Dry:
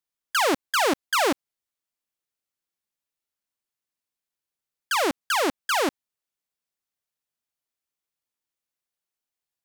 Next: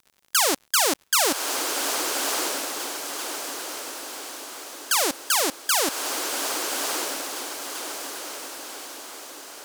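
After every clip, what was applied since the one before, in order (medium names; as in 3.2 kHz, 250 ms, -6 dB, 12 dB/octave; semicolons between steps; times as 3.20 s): tone controls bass -6 dB, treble +14 dB; crackle 71 per s -37 dBFS; echo that smears into a reverb 1185 ms, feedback 52%, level -3.5 dB; trim -2.5 dB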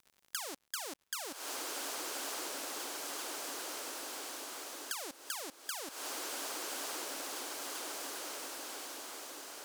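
compression 5:1, threshold -31 dBFS, peak gain reduction 15.5 dB; trim -6.5 dB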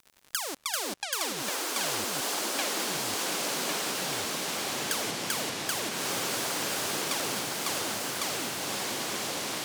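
ever faster or slower copies 167 ms, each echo -6 st, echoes 3; trim +7.5 dB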